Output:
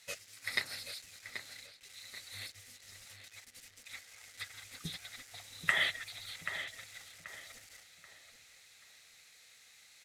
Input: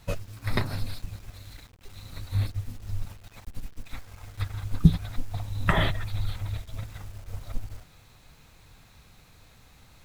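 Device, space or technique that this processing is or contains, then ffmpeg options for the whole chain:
piezo pickup straight into a mixer: -filter_complex "[0:a]lowpass=8000,aderivative,equalizer=f=500:t=o:w=0.33:g=5,equalizer=f=1000:t=o:w=0.33:g=-8,equalizer=f=2000:t=o:w=0.33:g=9,asplit=2[s0][s1];[s1]adelay=783,lowpass=f=2700:p=1,volume=0.398,asplit=2[s2][s3];[s3]adelay=783,lowpass=f=2700:p=1,volume=0.37,asplit=2[s4][s5];[s5]adelay=783,lowpass=f=2700:p=1,volume=0.37,asplit=2[s6][s7];[s7]adelay=783,lowpass=f=2700:p=1,volume=0.37[s8];[s0][s2][s4][s6][s8]amix=inputs=5:normalize=0,volume=1.88"

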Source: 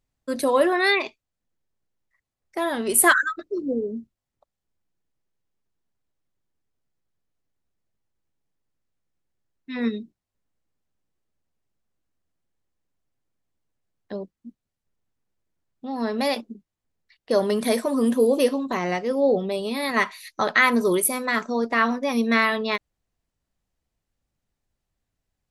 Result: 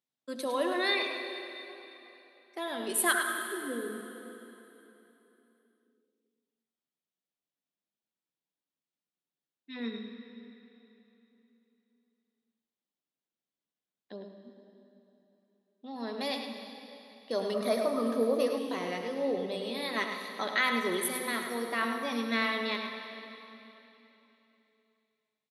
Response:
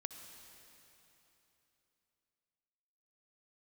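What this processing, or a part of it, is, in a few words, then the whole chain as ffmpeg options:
PA in a hall: -filter_complex "[0:a]highpass=f=170:w=0.5412,highpass=f=170:w=1.3066,equalizer=f=3500:t=o:w=0.69:g=8,aecho=1:1:105:0.398[s0];[1:a]atrim=start_sample=2205[s1];[s0][s1]afir=irnorm=-1:irlink=0,asettb=1/sr,asplit=3[s2][s3][s4];[s2]atrim=end=17.544[s5];[s3]atrim=start=17.54:end=18.58,asetpts=PTS-STARTPTS,afade=t=in:d=0.004:c=qsin,afade=t=out:st=1.036:d=0.004:c=qsin,equalizer=f=630:t=o:w=0.33:g=9,equalizer=f=1250:t=o:w=0.33:g=12,equalizer=f=3150:t=o:w=0.33:g=-9,equalizer=f=8000:t=o:w=0.33:g=-11[s6];[s4]atrim=start=18.576[s7];[s5][s6]acrossfade=d=0.004:c1=hsin:c2=qsin[s8];[s8][s7]acrossfade=d=0.004:c1=qsin:c2=hsin,volume=0.398"

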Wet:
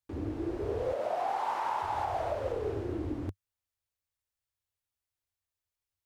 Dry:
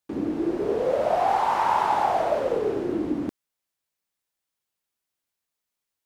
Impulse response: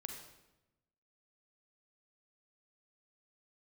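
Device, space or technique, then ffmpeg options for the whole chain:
car stereo with a boomy subwoofer: -filter_complex "[0:a]asettb=1/sr,asplit=3[s0][s1][s2];[s0]atrim=end=0.954[s3];[s1]atrim=start=0.95:end=1.82,asetpts=PTS-STARTPTS,afade=t=in:d=0.004:c=qsin,afade=t=out:st=0.866:d=0.004:c=qsin,highpass=f=180:w=0.5412,highpass=f=180:w=1.3066[s4];[s2]atrim=start=1.816[s5];[s3][s4]acrossfade=d=0.004:c1=hsin:c2=qsin[s6];[s6][s5]acrossfade=d=0.004:c1=qsin:c2=hsin,lowshelf=f=130:t=q:w=3:g=10.5,alimiter=limit=0.168:level=0:latency=1:release=147,volume=0.422"

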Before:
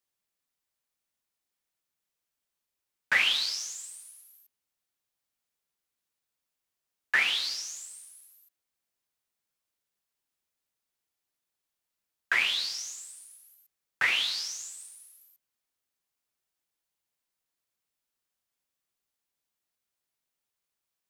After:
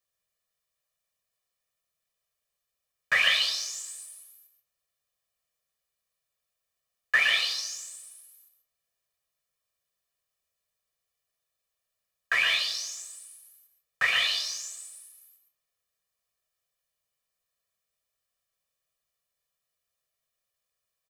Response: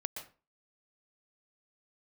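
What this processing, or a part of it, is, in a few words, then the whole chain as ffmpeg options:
microphone above a desk: -filter_complex "[0:a]asettb=1/sr,asplit=3[s0][s1][s2];[s0]atrim=end=3.714[s3];[s1]atrim=start=3.71:end=4.2,asetpts=PTS-STARTPTS,afade=t=in:d=0.004:c=qsin,afade=t=out:st=0.486:d=0.004:c=qsin,asplit=2[s4][s5];[s5]adelay=20,volume=0.562[s6];[s4][s6]amix=inputs=2:normalize=0,atrim=end_sample=21609[s7];[s2]atrim=start=4.196[s8];[s3][s7]acrossfade=d=0.004:c1=hsin:c2=qsin[s9];[s9][s8]acrossfade=d=0.004:c1=qsin:c2=hsin,aecho=1:1:1.7:0.82[s10];[1:a]atrim=start_sample=2205[s11];[s10][s11]afir=irnorm=-1:irlink=0"

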